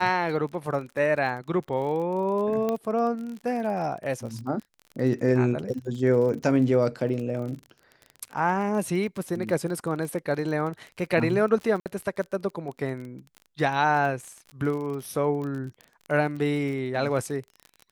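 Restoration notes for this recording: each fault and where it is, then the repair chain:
surface crackle 33 per second −33 dBFS
0:02.69: click −15 dBFS
0:11.80–0:11.86: drop-out 58 ms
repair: click removal
repair the gap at 0:11.80, 58 ms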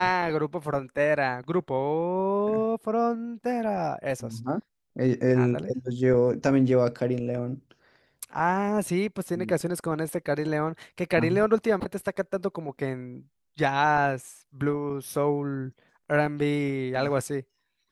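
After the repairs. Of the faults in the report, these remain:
none of them is left

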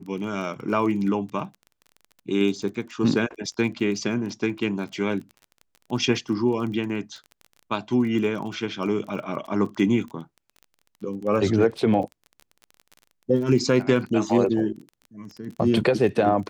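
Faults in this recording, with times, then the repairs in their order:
surface crackle 23 per second −33 dBFS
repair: click removal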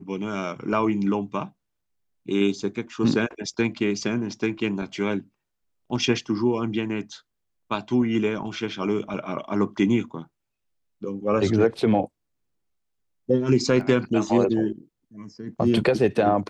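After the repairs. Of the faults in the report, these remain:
none of them is left

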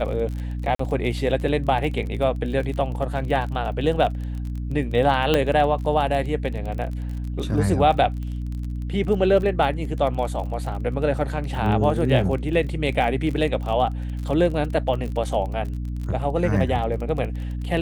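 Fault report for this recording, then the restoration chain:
surface crackle 30 per second −30 dBFS
mains hum 60 Hz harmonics 5 −28 dBFS
0:00.75–0:00.79: drop-out 44 ms
0:05.34: click −6 dBFS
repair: click removal
hum removal 60 Hz, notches 5
repair the gap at 0:00.75, 44 ms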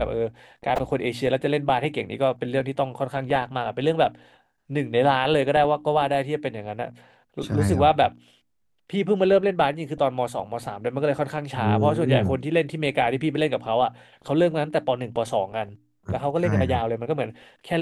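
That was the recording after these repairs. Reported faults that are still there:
none of them is left

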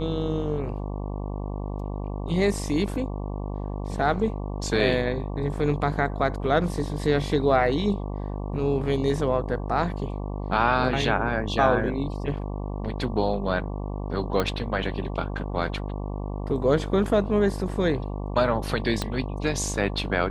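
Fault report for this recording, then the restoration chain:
mains buzz 50 Hz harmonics 23 −31 dBFS
0:14.40: click −11 dBFS
0:19.02: click −12 dBFS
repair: click removal
hum removal 50 Hz, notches 23

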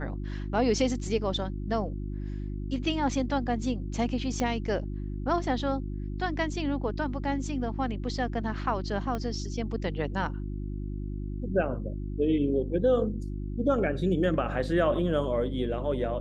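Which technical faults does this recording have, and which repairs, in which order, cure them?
mains hum 50 Hz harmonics 7 −34 dBFS
0:04.40: click −16 dBFS
0:09.15: click −20 dBFS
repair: click removal
hum removal 50 Hz, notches 7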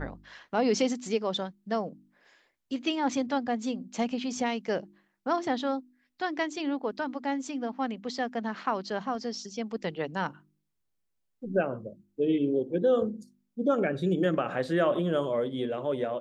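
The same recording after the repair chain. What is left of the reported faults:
0:04.40: click
0:09.15: click

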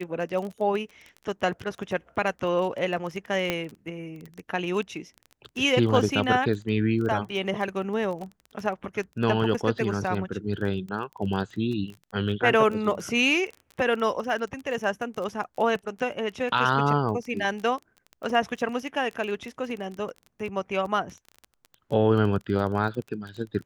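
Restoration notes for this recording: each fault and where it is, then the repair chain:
surface crackle 20 per second −32 dBFS
0:03.50: click −11 dBFS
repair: click removal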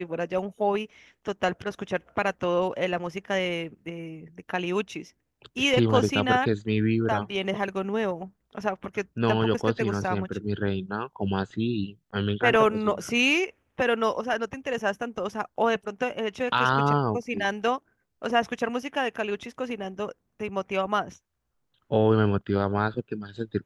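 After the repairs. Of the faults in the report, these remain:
none of them is left

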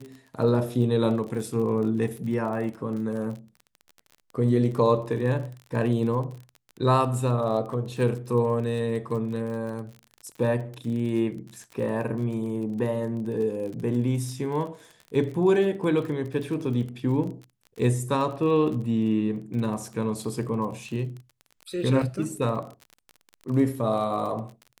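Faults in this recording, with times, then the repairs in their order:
surface crackle 32 per second −34 dBFS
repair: click removal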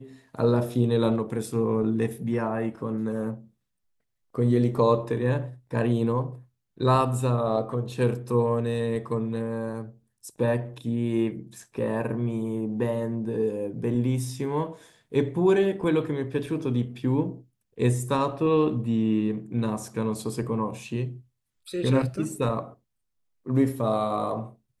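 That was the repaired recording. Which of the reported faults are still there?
none of them is left

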